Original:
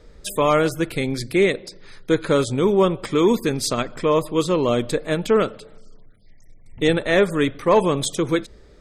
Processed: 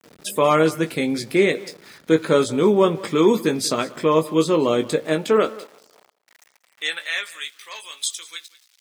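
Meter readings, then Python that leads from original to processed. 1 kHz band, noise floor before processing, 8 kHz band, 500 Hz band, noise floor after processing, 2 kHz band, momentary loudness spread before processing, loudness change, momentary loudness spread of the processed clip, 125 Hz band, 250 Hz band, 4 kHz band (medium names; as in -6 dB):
-0.5 dB, -47 dBFS, +1.0 dB, -0.5 dB, -62 dBFS, -0.5 dB, 6 LU, 0.0 dB, 16 LU, -3.5 dB, 0.0 dB, +1.0 dB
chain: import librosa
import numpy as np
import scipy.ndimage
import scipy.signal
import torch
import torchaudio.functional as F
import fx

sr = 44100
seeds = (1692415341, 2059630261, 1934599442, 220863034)

p1 = fx.doubler(x, sr, ms=19.0, db=-7.5)
p2 = np.where(np.abs(p1) >= 10.0 ** (-42.5 / 20.0), p1, 0.0)
p3 = fx.filter_sweep_highpass(p2, sr, from_hz=180.0, to_hz=3300.0, start_s=4.95, end_s=7.49, q=0.94)
y = p3 + fx.echo_single(p3, sr, ms=187, db=-20.0, dry=0)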